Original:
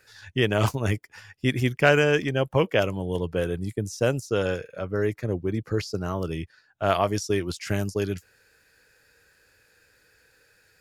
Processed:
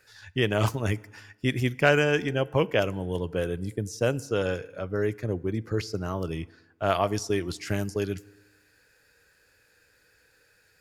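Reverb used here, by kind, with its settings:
feedback delay network reverb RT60 1.2 s, low-frequency decay 1×, high-frequency decay 0.65×, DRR 19.5 dB
level −2 dB

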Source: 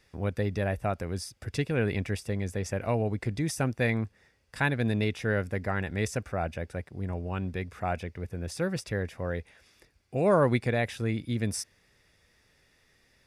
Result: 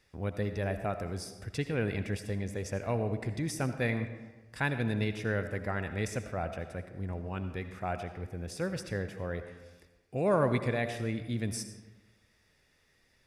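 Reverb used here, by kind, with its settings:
comb and all-pass reverb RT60 1.2 s, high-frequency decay 0.6×, pre-delay 40 ms, DRR 9 dB
level −4 dB

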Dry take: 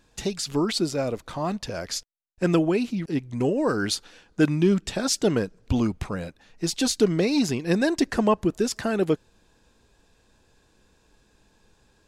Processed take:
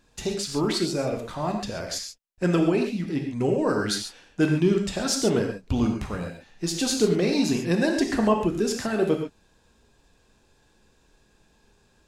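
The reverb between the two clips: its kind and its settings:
reverb whose tail is shaped and stops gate 160 ms flat, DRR 2 dB
level −2 dB

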